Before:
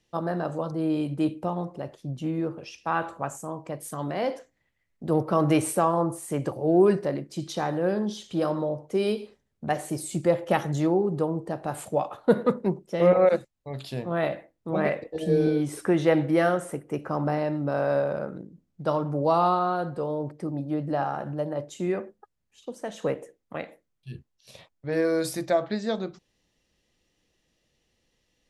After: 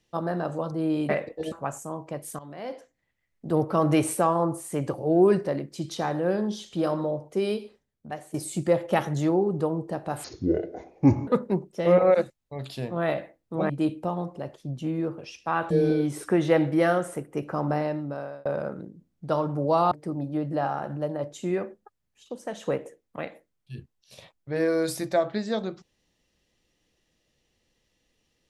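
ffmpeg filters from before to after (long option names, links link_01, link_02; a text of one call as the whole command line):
ffmpeg -i in.wav -filter_complex "[0:a]asplit=11[link_01][link_02][link_03][link_04][link_05][link_06][link_07][link_08][link_09][link_10][link_11];[link_01]atrim=end=1.092[link_12];[link_02]atrim=start=14.838:end=15.272[link_13];[link_03]atrim=start=3.098:end=3.97,asetpts=PTS-STARTPTS,afade=type=out:start_time=0.868:duration=0.004:curve=hsin:silence=0.188365[link_14];[link_04]atrim=start=3.97:end=9.92,asetpts=PTS-STARTPTS,afade=type=in:duration=1.1:silence=0.188365,afade=type=out:start_time=4.86:duration=1.09:silence=0.199526[link_15];[link_05]atrim=start=9.92:end=11.824,asetpts=PTS-STARTPTS,afade=type=in:duration=0.004:curve=hsin:silence=0.199526[link_16];[link_06]atrim=start=11.82:end=12.42,asetpts=PTS-STARTPTS,asetrate=25578,aresample=44100[link_17];[link_07]atrim=start=12.416:end=14.842[link_18];[link_08]atrim=start=1.088:end=3.102[link_19];[link_09]atrim=start=15.268:end=18.02,asetpts=PTS-STARTPTS,afade=type=out:start_time=2.102:duration=0.65[link_20];[link_10]atrim=start=18.02:end=19.482,asetpts=PTS-STARTPTS,afade=type=in:duration=0.004:curve=hsin[link_21];[link_11]atrim=start=20.278[link_22];[link_12][link_13]acrossfade=duration=0.004:curve1=hsin:curve2=hsin[link_23];[link_14][link_15][link_16]concat=n=3:v=0:a=1[link_24];[link_23][link_24]acrossfade=duration=0.004:curve1=hsin:curve2=hsin[link_25];[link_25][link_17]acrossfade=duration=0.004:curve1=hsin:curve2=hsin[link_26];[link_26][link_18]acrossfade=duration=0.004:curve1=hsin:curve2=hsin[link_27];[link_27][link_19]acrossfade=duration=0.004:curve1=hsin:curve2=hsin[link_28];[link_20][link_21]concat=n=2:v=0:a=1[link_29];[link_28][link_29]acrossfade=duration=0.004:curve1=hsin:curve2=hsin[link_30];[link_30][link_22]acrossfade=duration=0.004:curve1=hsin:curve2=hsin" out.wav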